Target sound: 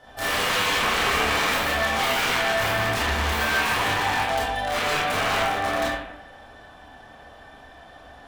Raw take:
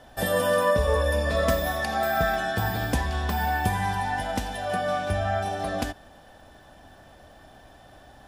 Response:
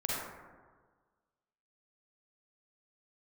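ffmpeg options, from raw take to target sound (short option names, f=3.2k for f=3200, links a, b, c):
-filter_complex "[0:a]aeval=exprs='(mod(11.9*val(0)+1,2)-1)/11.9':c=same,asplit=2[a][b];[b]highpass=f=720:p=1,volume=3dB,asoftclip=type=tanh:threshold=-21.5dB[c];[a][c]amix=inputs=2:normalize=0,lowpass=f=4.7k:p=1,volume=-6dB[d];[1:a]atrim=start_sample=2205,asetrate=79380,aresample=44100[e];[d][e]afir=irnorm=-1:irlink=0,volume=4.5dB"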